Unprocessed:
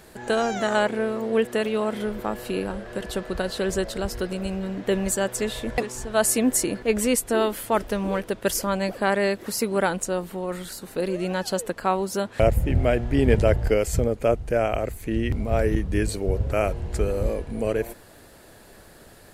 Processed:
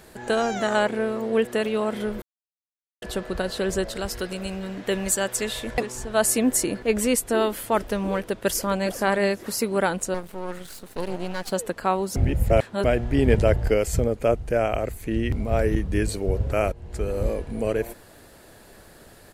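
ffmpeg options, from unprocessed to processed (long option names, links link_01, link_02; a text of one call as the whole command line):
ffmpeg -i in.wav -filter_complex "[0:a]asettb=1/sr,asplit=3[link_01][link_02][link_03];[link_01]atrim=end=3.954[link_04];[link_02]atrim=start=3.95:end=5.74,asetpts=PTS-STARTPTS,afade=type=in:duration=0.004:curve=qsin,afade=type=out:start_time=1.786:duration=0.004:curve=qsin,tiltshelf=frequency=970:gain=-3.5[link_05];[link_03]atrim=start=5.736[link_06];[link_04][link_05]acrossfade=duration=0.004:curve1=hsin:curve2=qsin[link_07];[link_07][link_06]acrossfade=duration=0.004:curve1=qsin:curve2=hsin,asplit=2[link_08][link_09];[link_09]afade=type=in:start_time=8.22:duration=0.01,afade=type=out:start_time=8.91:duration=0.01,aecho=0:1:410|820:0.281838|0.0422757[link_10];[link_08][link_10]amix=inputs=2:normalize=0,asettb=1/sr,asplit=3[link_11][link_12][link_13];[link_11]atrim=end=10.144[link_14];[link_12]atrim=start=10.14:end=11.52,asetpts=PTS-STARTPTS,afade=type=in:duration=0.004:curve=qsin,afade=type=out:start_time=1.376:duration=0.004:curve=qsin,aeval=exprs='max(val(0),0)':channel_layout=same[link_15];[link_13]atrim=start=11.516[link_16];[link_14][link_15]acrossfade=duration=0.004:curve1=hsin:curve2=qsin[link_17];[link_17][link_16]acrossfade=duration=0.004:curve1=qsin:curve2=hsin,asplit=6[link_18][link_19][link_20][link_21][link_22][link_23];[link_18]atrim=end=2.22,asetpts=PTS-STARTPTS,afade=type=out:start_time=2.216:duration=0.004:curve=hsin[link_24];[link_19]atrim=start=2.22:end=3.02,asetpts=PTS-STARTPTS,volume=0[link_25];[link_20]atrim=start=3.02:end=12.162,asetpts=PTS-STARTPTS,afade=type=in:duration=0.004:curve=hsin[link_26];[link_21]atrim=start=12.158:end=12.842,asetpts=PTS-STARTPTS,areverse[link_27];[link_22]atrim=start=12.838:end=16.72,asetpts=PTS-STARTPTS,afade=type=out:start_time=3.878:duration=0.004:curve=hsin:silence=0.158489[link_28];[link_23]atrim=start=16.72,asetpts=PTS-STARTPTS,afade=type=in:duration=0.51:silence=0.158489[link_29];[link_24][link_25][link_26]concat=n=3:v=0:a=1[link_30];[link_30][link_27]acrossfade=duration=0.004:curve1=hsin:curve2=hsin[link_31];[link_28][link_29]concat=n=2:v=0:a=1[link_32];[link_31][link_32]acrossfade=duration=0.004:curve1=hsin:curve2=hsin" out.wav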